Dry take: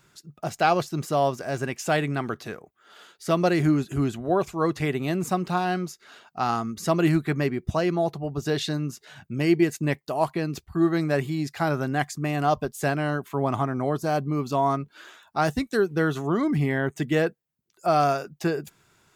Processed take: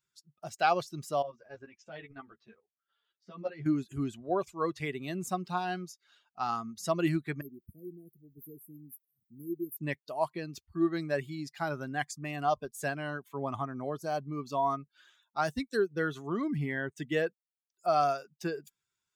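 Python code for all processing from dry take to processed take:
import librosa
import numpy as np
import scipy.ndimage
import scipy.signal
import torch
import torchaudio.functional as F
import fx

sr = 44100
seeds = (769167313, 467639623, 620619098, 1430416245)

y = fx.chain(x, sr, fx.level_steps(step_db=9),
    fx.air_absorb(metres=150.0),
    fx.ensemble(), at=(1.22, 3.66))
y = fx.chain(y, sr, fx.cheby2_bandstop(low_hz=830.0, high_hz=6100.0, order=4, stop_db=50),
    fx.tilt_eq(slope=3.0), at=(7.41, 9.77))
y = fx.bin_expand(y, sr, power=1.5)
y = fx.low_shelf(y, sr, hz=200.0, db=-8.0)
y = F.gain(torch.from_numpy(y), -3.0).numpy()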